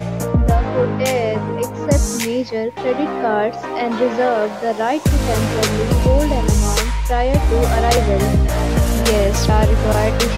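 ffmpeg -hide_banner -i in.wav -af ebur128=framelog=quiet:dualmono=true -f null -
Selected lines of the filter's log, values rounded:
Integrated loudness:
  I:         -14.3 LUFS
  Threshold: -24.3 LUFS
Loudness range:
  LRA:         3.2 LU
  Threshold: -34.5 LUFS
  LRA low:   -16.2 LUFS
  LRA high:  -13.0 LUFS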